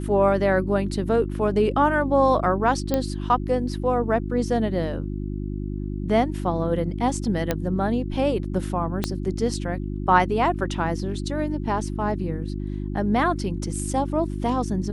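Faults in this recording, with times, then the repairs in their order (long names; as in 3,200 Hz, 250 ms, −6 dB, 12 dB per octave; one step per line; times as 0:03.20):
mains hum 50 Hz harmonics 7 −29 dBFS
0:02.94: click −9 dBFS
0:07.51: click −8 dBFS
0:09.04: click −9 dBFS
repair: click removal
hum removal 50 Hz, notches 7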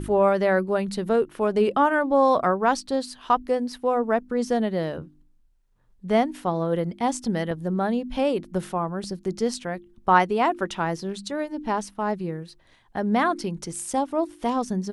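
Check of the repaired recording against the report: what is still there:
0:09.04: click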